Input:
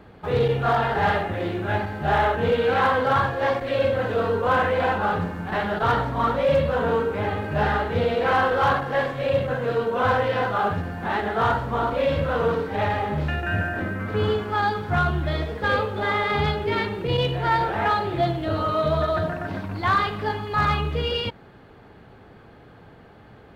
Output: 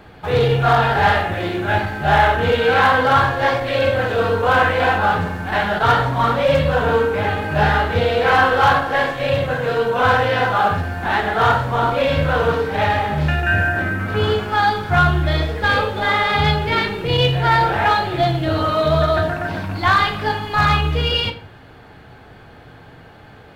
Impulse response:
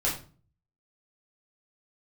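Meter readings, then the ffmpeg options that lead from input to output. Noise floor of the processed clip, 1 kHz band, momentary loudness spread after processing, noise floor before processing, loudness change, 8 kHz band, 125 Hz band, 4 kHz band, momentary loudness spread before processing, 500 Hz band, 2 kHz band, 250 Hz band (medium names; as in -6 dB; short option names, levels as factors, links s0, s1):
-43 dBFS, +6.5 dB, 6 LU, -48 dBFS, +6.0 dB, no reading, +6.5 dB, +9.0 dB, 6 LU, +4.0 dB, +8.0 dB, +4.0 dB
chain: -filter_complex "[0:a]tiltshelf=f=1400:g=-3.5,asplit=2[s0][s1];[1:a]atrim=start_sample=2205[s2];[s1][s2]afir=irnorm=-1:irlink=0,volume=0.237[s3];[s0][s3]amix=inputs=2:normalize=0,volume=1.68"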